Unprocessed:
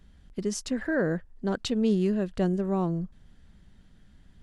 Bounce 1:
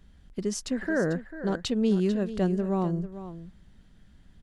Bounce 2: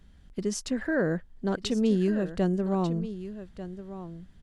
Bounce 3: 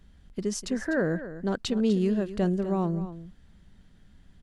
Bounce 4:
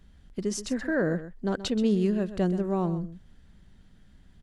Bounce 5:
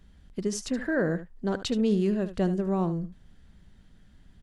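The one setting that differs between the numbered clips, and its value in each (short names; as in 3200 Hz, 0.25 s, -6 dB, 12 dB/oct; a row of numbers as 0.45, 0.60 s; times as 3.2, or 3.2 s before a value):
echo, time: 444, 1193, 249, 128, 74 ms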